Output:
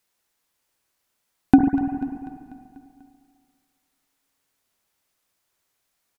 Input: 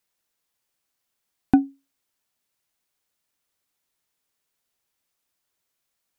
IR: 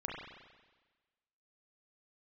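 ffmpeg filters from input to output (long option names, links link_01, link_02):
-filter_complex "[0:a]aecho=1:1:245|490|735|980|1225|1470:0.178|0.101|0.0578|0.0329|0.0188|0.0107,asplit=2[link_01][link_02];[1:a]atrim=start_sample=2205,asetrate=29106,aresample=44100[link_03];[link_02][link_03]afir=irnorm=-1:irlink=0,volume=-1dB[link_04];[link_01][link_04]amix=inputs=2:normalize=0,volume=-1dB"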